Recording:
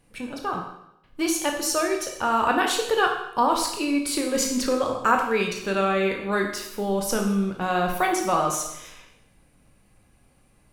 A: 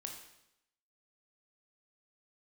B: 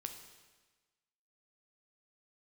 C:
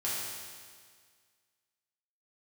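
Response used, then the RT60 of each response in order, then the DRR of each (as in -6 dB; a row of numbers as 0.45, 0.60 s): A; 0.80, 1.3, 1.8 s; 1.5, 5.0, -8.5 dB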